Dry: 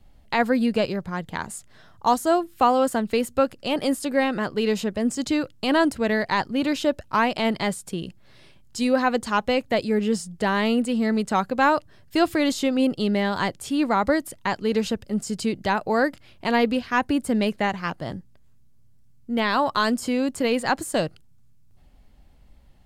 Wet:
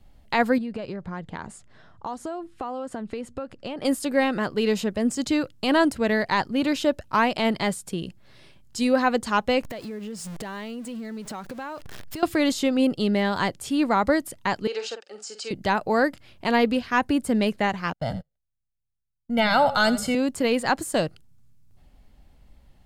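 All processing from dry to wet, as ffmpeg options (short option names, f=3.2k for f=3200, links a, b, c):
-filter_complex "[0:a]asettb=1/sr,asplit=3[a][b][c];[a]atrim=end=0.584[d];[b]atrim=start=0.58:end=3.85,asetpts=PTS-STARTPTS,afade=t=in:d=0.004:c=qsin,afade=t=out:st=3.266:d=0.004:c=qsin,lowpass=f=9.9k:w=0.5412,lowpass=f=9.9k:w=1.3066,highshelf=f=3.8k:g=-10.5,acompressor=threshold=-28dB:ratio=8:attack=3.2:release=140:knee=1:detection=peak[e];[c]atrim=start=3.846[f];[d][e]acrossfade=d=0.004:c1=hsin:c2=qsin[g];[g][f]acrossfade=d=0.004:c1=qsin:c2=hsin,asettb=1/sr,asplit=3[h][i][j];[h]atrim=end=9.634[k];[i]atrim=start=9.63:end=12.23,asetpts=PTS-STARTPTS,afade=t=in:d=0.004:c=qsin,afade=t=out:st=2.596:d=0.004:c=qsin,aeval=exprs='val(0)+0.5*0.0237*sgn(val(0))':c=same,acompressor=threshold=-33dB:ratio=5:attack=3.2:release=140:knee=1:detection=peak[l];[j]atrim=start=12.226[m];[k][l]acrossfade=d=0.004:c1=hsin:c2=qsin[n];[n][m]acrossfade=d=0.004:c1=qsin:c2=hsin,asettb=1/sr,asplit=3[o][p][q];[o]atrim=end=14.674[r];[p]atrim=start=14.67:end=15.51,asetpts=PTS-STARTPTS,afade=t=in:d=0.004:c=qsin,afade=t=out:st=0.836:d=0.004:c=qsin,asuperstop=centerf=1000:order=4:qfactor=3.5,highpass=f=490:w=0.5412,highpass=f=490:w=1.3066,equalizer=f=620:t=q:w=4:g=-9,equalizer=f=960:t=q:w=4:g=5,equalizer=f=2k:t=q:w=4:g=-6,equalizer=f=3.5k:t=q:w=4:g=-3,lowpass=f=7k:w=0.5412,lowpass=f=7k:w=1.3066,asplit=2[s][t];[t]adelay=48,volume=-9dB[u];[s][u]amix=inputs=2:normalize=0,atrim=end_sample=37044[v];[q]atrim=start=15.506[w];[r][v]acrossfade=d=0.004:c1=hsin:c2=qsin[x];[x][w]acrossfade=d=0.004:c1=qsin:c2=hsin,asettb=1/sr,asplit=3[y][z][aa];[y]atrim=end=17.934[ab];[z]atrim=start=17.93:end=20.15,asetpts=PTS-STARTPTS,afade=t=in:d=0.004:c=qsin,afade=t=out:st=2.216:d=0.004:c=qsin,aecho=1:1:1.4:0.94,atrim=end_sample=97902,asplit=4[ac][ad][ae][af];[ad]adelay=84,afreqshift=-34,volume=-14.5dB[ag];[ae]adelay=168,afreqshift=-68,volume=-24.7dB[ah];[af]adelay=252,afreqshift=-102,volume=-34.8dB[ai];[ac][ag][ah][ai]amix=inputs=4:normalize=0,atrim=end_sample=97902,agate=range=-35dB:threshold=-35dB:ratio=16:release=100:detection=peak[aj];[aa]atrim=start=20.146[ak];[ab][aj]acrossfade=d=0.004:c1=hsin:c2=qsin[al];[al][ak]acrossfade=d=0.004:c1=qsin:c2=hsin"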